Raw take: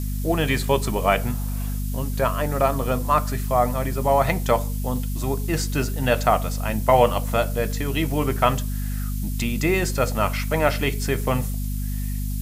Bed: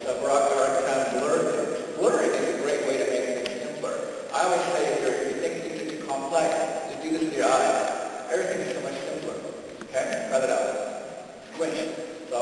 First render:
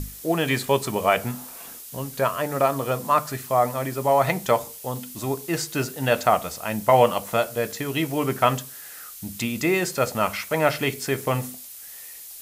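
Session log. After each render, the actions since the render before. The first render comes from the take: notches 50/100/150/200/250 Hz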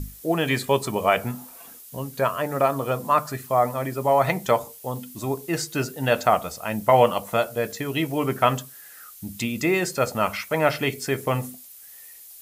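denoiser 7 dB, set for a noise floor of -41 dBFS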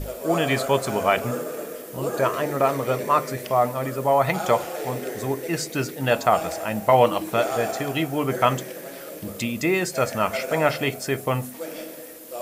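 add bed -6.5 dB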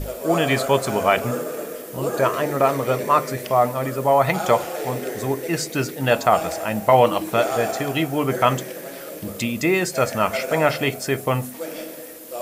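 gain +2.5 dB; limiter -3 dBFS, peak gain reduction 1.5 dB

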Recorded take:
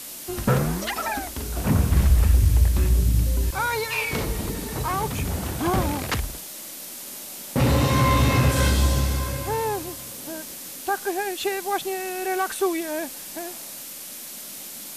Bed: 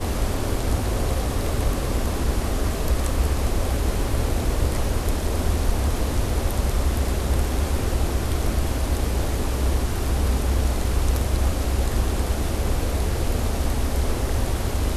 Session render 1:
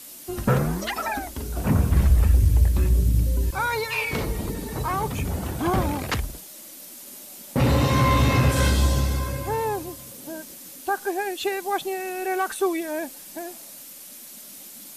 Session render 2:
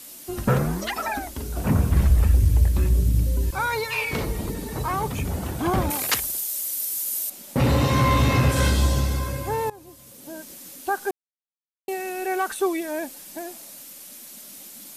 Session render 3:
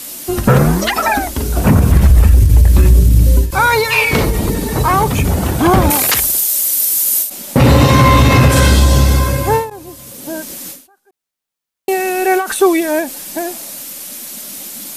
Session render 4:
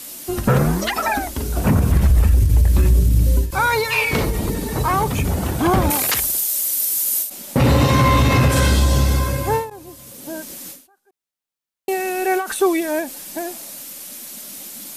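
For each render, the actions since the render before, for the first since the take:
denoiser 7 dB, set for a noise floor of -38 dBFS
5.9–7.3 RIAA curve recording; 9.7–10.56 fade in, from -20.5 dB; 11.11–11.88 mute
maximiser +13.5 dB; ending taper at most 130 dB/s
gain -6 dB

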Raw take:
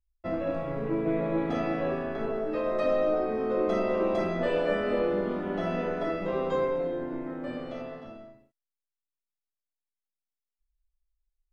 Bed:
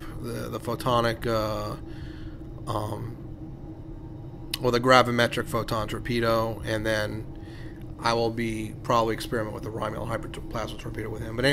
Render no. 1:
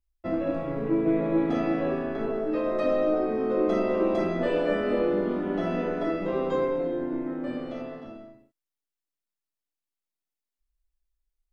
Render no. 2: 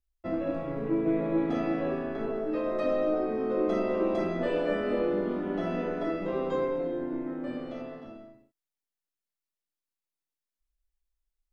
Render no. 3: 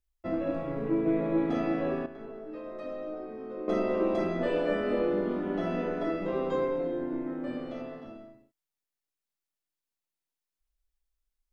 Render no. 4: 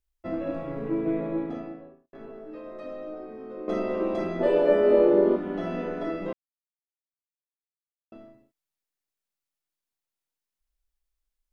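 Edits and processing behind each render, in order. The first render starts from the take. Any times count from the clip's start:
bell 300 Hz +6.5 dB 0.69 oct
gain -3 dB
2.06–3.68 gain -10.5 dB
1.03–2.13 studio fade out; 4.39–5.35 small resonant body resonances 400/570/880 Hz, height 11 dB -> 16 dB; 6.33–8.12 mute

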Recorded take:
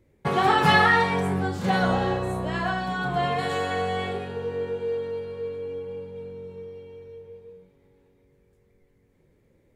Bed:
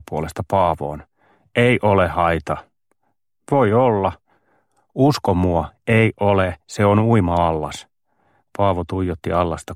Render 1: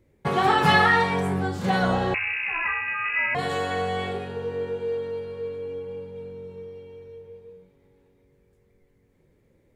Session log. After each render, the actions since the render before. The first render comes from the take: 2.14–3.35 inverted band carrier 2700 Hz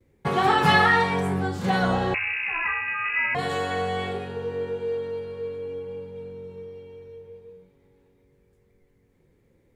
gate with hold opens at -56 dBFS; notch 600 Hz, Q 12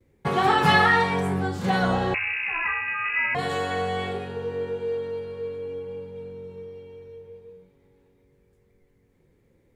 nothing audible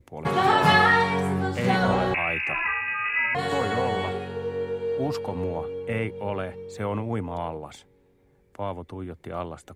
add bed -14 dB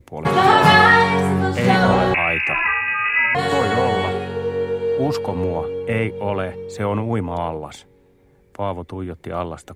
gain +7 dB; limiter -1 dBFS, peak gain reduction 1.5 dB

